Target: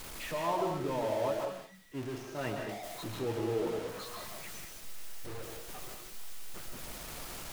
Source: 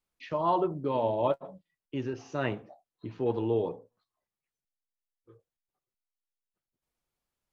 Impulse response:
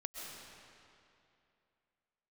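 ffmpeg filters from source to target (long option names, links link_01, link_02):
-filter_complex "[0:a]aeval=exprs='val(0)+0.5*0.0355*sgn(val(0))':channel_layout=same,flanger=delay=1.9:depth=5.8:regen=-85:speed=0.76:shape=triangular,asettb=1/sr,asplit=3[link_01][link_02][link_03];[link_01]atrim=end=1.454[link_04];[link_02]atrim=start=1.45:end=2.69,asetpts=PTS-STARTPTS,afade=type=in:duration=0.004:curve=qsin,afade=type=out:start_time=1.236:duration=0.004:curve=qsin,agate=range=-33dB:threshold=-31dB:ratio=3:detection=peak[link_05];[link_03]atrim=start=2.686[link_06];[link_04][link_05]acrossfade=duration=0.004:curve1=hsin:curve2=qsin[link_07];[link_07][link_06]acrossfade=duration=0.004:curve1=qsin:curve2=hsin[link_08];[1:a]atrim=start_sample=2205,afade=type=out:start_time=0.27:duration=0.01,atrim=end_sample=12348[link_09];[link_08][link_09]afir=irnorm=-1:irlink=0"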